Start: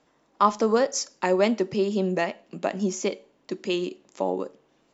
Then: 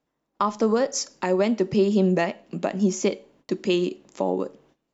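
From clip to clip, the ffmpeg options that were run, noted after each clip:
-af "agate=range=0.126:threshold=0.001:ratio=16:detection=peak,lowshelf=f=240:g=8,alimiter=limit=0.211:level=0:latency=1:release=364,volume=1.33"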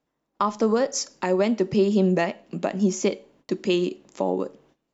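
-af anull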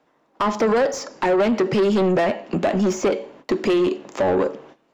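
-filter_complex "[0:a]asoftclip=type=tanh:threshold=0.168,acrossover=split=650|1600[s0][s1][s2];[s0]acompressor=threshold=0.0562:ratio=4[s3];[s1]acompressor=threshold=0.0158:ratio=4[s4];[s2]acompressor=threshold=0.0126:ratio=4[s5];[s3][s4][s5]amix=inputs=3:normalize=0,asplit=2[s6][s7];[s7]highpass=f=720:p=1,volume=12.6,asoftclip=type=tanh:threshold=0.168[s8];[s6][s8]amix=inputs=2:normalize=0,lowpass=f=1300:p=1,volume=0.501,volume=1.88"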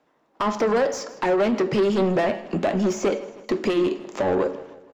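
-af "aecho=1:1:158|316|474|632:0.112|0.0583|0.0303|0.0158,flanger=delay=9.5:depth=3.5:regen=-78:speed=1.9:shape=sinusoidal,volume=1.26"

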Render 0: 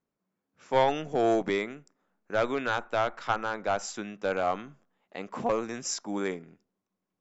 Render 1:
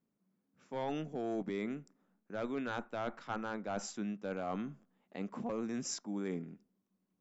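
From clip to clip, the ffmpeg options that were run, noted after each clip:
-af "equalizer=f=210:w=0.96:g=12,areverse,acompressor=threshold=0.0316:ratio=6,areverse,volume=0.562"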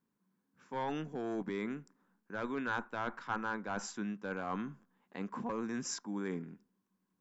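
-af "equalizer=f=630:t=o:w=0.33:g=-7,equalizer=f=1000:t=o:w=0.33:g=9,equalizer=f=1600:t=o:w=0.33:g=8"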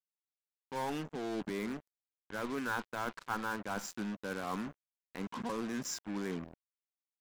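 -af "acrusher=bits=6:mix=0:aa=0.5"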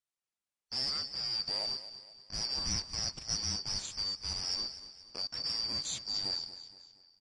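-af "afftfilt=real='real(if(lt(b,272),68*(eq(floor(b/68),0)*1+eq(floor(b/68),1)*2+eq(floor(b/68),2)*3+eq(floor(b/68),3)*0)+mod(b,68),b),0)':imag='imag(if(lt(b,272),68*(eq(floor(b/68),0)*1+eq(floor(b/68),1)*2+eq(floor(b/68),2)*3+eq(floor(b/68),3)*0)+mod(b,68),b),0)':win_size=2048:overlap=0.75,aecho=1:1:235|470|705|940:0.211|0.0951|0.0428|0.0193,volume=1.33" -ar 32000 -c:a libmp3lame -b:a 40k

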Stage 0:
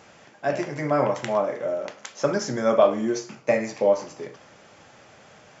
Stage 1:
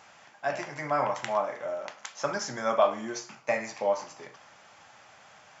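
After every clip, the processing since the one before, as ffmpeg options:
-af "lowshelf=f=610:t=q:w=1.5:g=-8,volume=0.75"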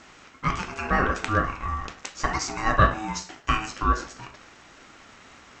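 -af "aeval=exprs='val(0)*sin(2*PI*540*n/s)':c=same,volume=2.37"

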